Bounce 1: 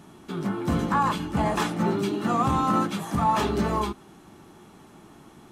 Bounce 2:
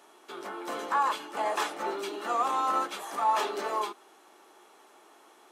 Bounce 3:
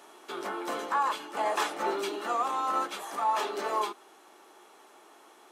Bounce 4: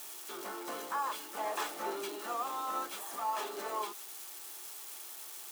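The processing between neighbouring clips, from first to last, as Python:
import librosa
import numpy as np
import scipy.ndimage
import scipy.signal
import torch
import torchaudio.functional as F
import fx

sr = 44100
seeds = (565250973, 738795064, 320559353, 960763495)

y1 = scipy.signal.sosfilt(scipy.signal.butter(4, 420.0, 'highpass', fs=sr, output='sos'), x)
y1 = F.gain(torch.from_numpy(y1), -2.5).numpy()
y2 = fx.rider(y1, sr, range_db=4, speed_s=0.5)
y3 = y2 + 0.5 * 10.0 ** (-29.5 / 20.0) * np.diff(np.sign(y2), prepend=np.sign(y2[:1]))
y3 = F.gain(torch.from_numpy(y3), -7.5).numpy()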